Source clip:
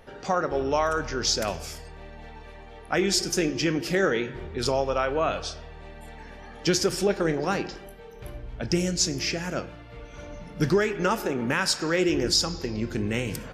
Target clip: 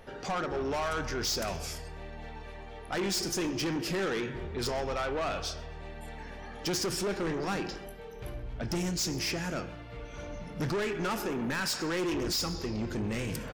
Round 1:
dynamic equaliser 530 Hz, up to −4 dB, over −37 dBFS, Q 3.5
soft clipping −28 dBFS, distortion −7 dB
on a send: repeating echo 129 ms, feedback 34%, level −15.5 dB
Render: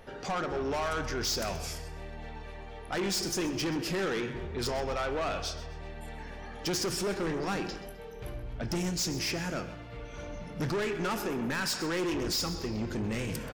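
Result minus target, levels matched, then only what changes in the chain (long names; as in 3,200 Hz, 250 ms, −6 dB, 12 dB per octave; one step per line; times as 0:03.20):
echo-to-direct +9.5 dB
change: repeating echo 129 ms, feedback 34%, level −25 dB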